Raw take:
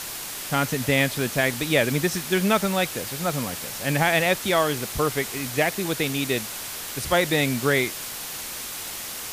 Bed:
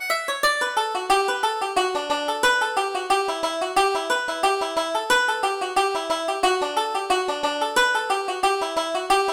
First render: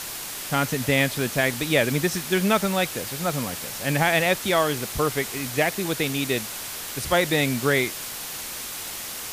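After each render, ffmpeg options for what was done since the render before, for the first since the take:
ffmpeg -i in.wav -af anull out.wav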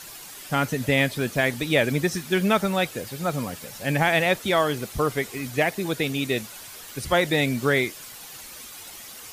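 ffmpeg -i in.wav -af "afftdn=noise_reduction=10:noise_floor=-34" out.wav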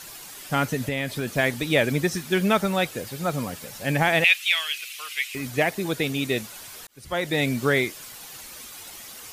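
ffmpeg -i in.wav -filter_complex "[0:a]asettb=1/sr,asplit=3[link_01][link_02][link_03];[link_01]atrim=end=0.844[link_04];[link_02]atrim=start=0.84:end=1.36,asetpts=PTS-STARTPTS,afade=type=in:duration=0.004:curve=qsin,afade=type=out:start_time=0.516:duration=0.004:curve=qsin,acompressor=threshold=-22dB:ratio=10:attack=3.2:release=140:knee=1:detection=peak[link_05];[link_03]atrim=start=1.356[link_06];[link_04][link_05]acrossfade=duration=0.004:curve1=hsin:curve2=qsin[link_07];[link_07][link_06]acrossfade=duration=0.004:curve1=qsin:curve2=hsin,asettb=1/sr,asplit=3[link_08][link_09][link_10];[link_08]atrim=end=4.244[link_11];[link_09]atrim=start=4.24:end=5.35,asetpts=PTS-STARTPTS,afade=type=in:duration=0.004:curve=qsin,afade=type=out:start_time=1.106:duration=0.004:curve=qsin,highpass=frequency=2600:width_type=q:width=4.8[link_12];[link_10]atrim=start=5.346[link_13];[link_11][link_12]acrossfade=duration=0.004:curve1=hsin:curve2=qsin[link_14];[link_14][link_13]acrossfade=duration=0.004:curve1=qsin:curve2=hsin,asplit=2[link_15][link_16];[link_15]atrim=end=6.87,asetpts=PTS-STARTPTS,afade=type=out:start_time=6.866:duration=0.004:curve=hsin[link_17];[link_16]atrim=start=6.87,asetpts=PTS-STARTPTS,afade=type=in:duration=0.61[link_18];[link_17][link_18]concat=n=2:v=0:a=1" out.wav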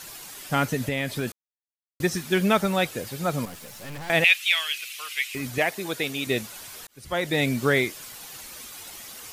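ffmpeg -i in.wav -filter_complex "[0:a]asettb=1/sr,asplit=3[link_01][link_02][link_03];[link_01]atrim=end=3.454[link_04];[link_02]atrim=start=3.45:end=4.1,asetpts=PTS-STARTPTS,afade=type=in:duration=0.004:curve=qsin,afade=type=out:start_time=0.646:duration=0.004:curve=qsin,aeval=exprs='(tanh(63.1*val(0)+0.55)-tanh(0.55))/63.1':channel_layout=same[link_05];[link_03]atrim=start=4.096[link_06];[link_04][link_05]acrossfade=duration=0.004:curve1=hsin:curve2=qsin[link_07];[link_07][link_06]acrossfade=duration=0.004:curve1=qsin:curve2=hsin,asettb=1/sr,asplit=3[link_08][link_09][link_10];[link_08]atrim=end=5.584[link_11];[link_09]atrim=start=5.58:end=6.27,asetpts=PTS-STARTPTS,afade=type=in:duration=0.004:curve=qsin,afade=type=out:start_time=0.686:duration=0.004:curve=qsin,lowshelf=frequency=290:gain=-10.5[link_12];[link_10]atrim=start=6.266[link_13];[link_11][link_12]acrossfade=duration=0.004:curve1=hsin:curve2=qsin[link_14];[link_14][link_13]acrossfade=duration=0.004:curve1=qsin:curve2=hsin,asplit=3[link_15][link_16][link_17];[link_15]atrim=end=1.32,asetpts=PTS-STARTPTS,afade=type=out:start_time=1.316:duration=0.004:curve=hsin[link_18];[link_16]atrim=start=1.32:end=2,asetpts=PTS-STARTPTS,volume=0[link_19];[link_17]atrim=start=2,asetpts=PTS-STARTPTS,afade=type=in:duration=0.004:curve=hsin[link_20];[link_18][link_19][link_20]concat=n=3:v=0:a=1" out.wav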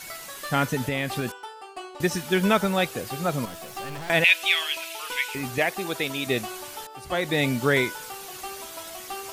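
ffmpeg -i in.wav -i bed.wav -filter_complex "[1:a]volume=-17dB[link_01];[0:a][link_01]amix=inputs=2:normalize=0" out.wav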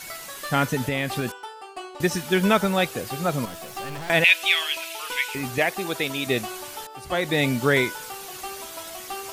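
ffmpeg -i in.wav -af "volume=1.5dB" out.wav

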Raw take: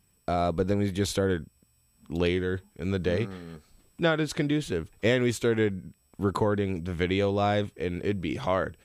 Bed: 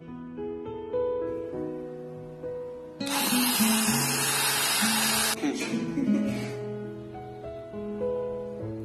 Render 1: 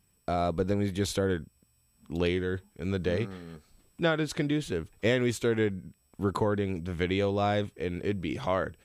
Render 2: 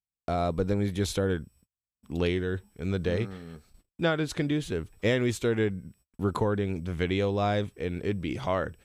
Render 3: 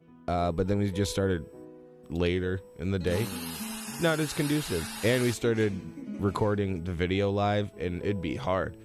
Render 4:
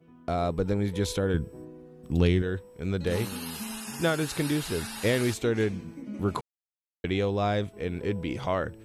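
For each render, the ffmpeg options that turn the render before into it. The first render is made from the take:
ffmpeg -i in.wav -af "volume=-2dB" out.wav
ffmpeg -i in.wav -af "agate=range=-36dB:threshold=-58dB:ratio=16:detection=peak,lowshelf=frequency=87:gain=5.5" out.wav
ffmpeg -i in.wav -i bed.wav -filter_complex "[1:a]volume=-13.5dB[link_01];[0:a][link_01]amix=inputs=2:normalize=0" out.wav
ffmpeg -i in.wav -filter_complex "[0:a]asettb=1/sr,asplit=3[link_01][link_02][link_03];[link_01]atrim=end=1.344[link_04];[link_02]atrim=start=1.34:end=2.42,asetpts=PTS-STARTPTS,afade=type=in:duration=0.004:curve=qsin,afade=type=out:start_time=1.076:duration=0.004:curve=qsin,bass=frequency=250:gain=9,treble=frequency=4000:gain=3[link_05];[link_03]atrim=start=2.416[link_06];[link_04][link_05]acrossfade=duration=0.004:curve1=hsin:curve2=qsin[link_07];[link_07][link_06]acrossfade=duration=0.004:curve1=qsin:curve2=hsin,asplit=3[link_08][link_09][link_10];[link_08]atrim=end=6.41,asetpts=PTS-STARTPTS,afade=type=out:start_time=6.406:duration=0.004:curve=hsin[link_11];[link_09]atrim=start=6.41:end=7.04,asetpts=PTS-STARTPTS,volume=0[link_12];[link_10]atrim=start=7.04,asetpts=PTS-STARTPTS,afade=type=in:duration=0.004:curve=hsin[link_13];[link_11][link_12][link_13]concat=n=3:v=0:a=1" out.wav

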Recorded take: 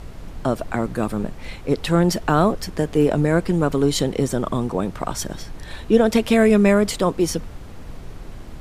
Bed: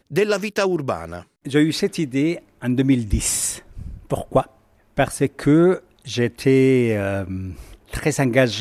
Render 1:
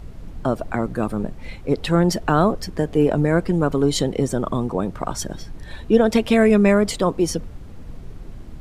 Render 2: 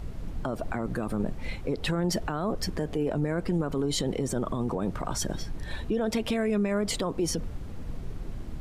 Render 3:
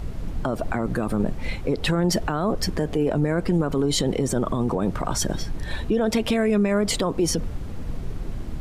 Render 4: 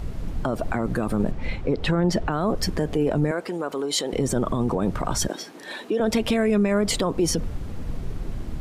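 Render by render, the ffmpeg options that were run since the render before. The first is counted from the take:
ffmpeg -i in.wav -af "afftdn=noise_reduction=7:noise_floor=-37" out.wav
ffmpeg -i in.wav -af "acompressor=threshold=-19dB:ratio=6,alimiter=limit=-19.5dB:level=0:latency=1:release=18" out.wav
ffmpeg -i in.wav -af "volume=6dB" out.wav
ffmpeg -i in.wav -filter_complex "[0:a]asettb=1/sr,asplit=3[link_01][link_02][link_03];[link_01]atrim=end=1.314[link_04];[link_02]atrim=start=1.31:end=2.32,asetpts=PTS-STARTPTS,afade=type=in:duration=0.004:curve=qsin,afade=type=out:start_time=1.006:duration=0.004:curve=qsin,aemphasis=mode=reproduction:type=50fm[link_05];[link_03]atrim=start=2.316[link_06];[link_04][link_05]acrossfade=duration=0.004:curve1=hsin:curve2=qsin[link_07];[link_07][link_06]acrossfade=duration=0.004:curve1=qsin:curve2=hsin,asettb=1/sr,asplit=3[link_08][link_09][link_10];[link_08]atrim=end=3.314[link_11];[link_09]atrim=start=3.31:end=4.13,asetpts=PTS-STARTPTS,afade=type=in:duration=0.004:curve=qsin,afade=type=out:start_time=0.816:duration=0.004:curve=qsin,highpass=420[link_12];[link_10]atrim=start=4.126[link_13];[link_11][link_12]acrossfade=duration=0.004:curve1=hsin:curve2=qsin[link_14];[link_14][link_13]acrossfade=duration=0.004:curve1=qsin:curve2=hsin,asettb=1/sr,asplit=3[link_15][link_16][link_17];[link_15]atrim=end=5.284[link_18];[link_16]atrim=start=5.28:end=6,asetpts=PTS-STARTPTS,afade=type=in:duration=0.004:curve=qsin,afade=type=out:start_time=0.716:duration=0.004:curve=qsin,highpass=frequency=270:width=0.5412,highpass=frequency=270:width=1.3066[link_19];[link_17]atrim=start=5.996[link_20];[link_18][link_19]acrossfade=duration=0.004:curve1=hsin:curve2=qsin[link_21];[link_21][link_20]acrossfade=duration=0.004:curve1=qsin:curve2=hsin" out.wav

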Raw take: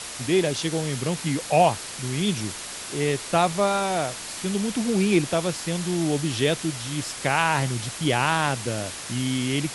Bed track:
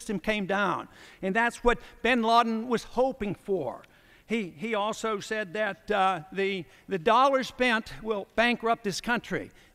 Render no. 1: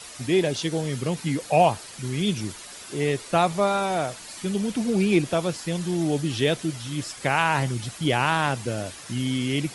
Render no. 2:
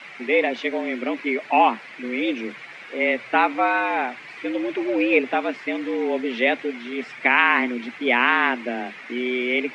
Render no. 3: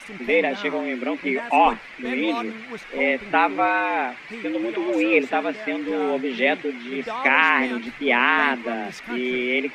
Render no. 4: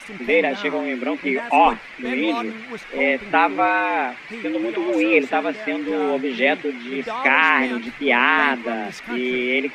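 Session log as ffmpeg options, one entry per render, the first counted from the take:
ffmpeg -i in.wav -af "afftdn=noise_reduction=9:noise_floor=-36" out.wav
ffmpeg -i in.wav -af "afreqshift=120,lowpass=frequency=2200:width_type=q:width=4.5" out.wav
ffmpeg -i in.wav -i bed.wav -filter_complex "[1:a]volume=-8.5dB[link_01];[0:a][link_01]amix=inputs=2:normalize=0" out.wav
ffmpeg -i in.wav -af "volume=2dB,alimiter=limit=-2dB:level=0:latency=1" out.wav

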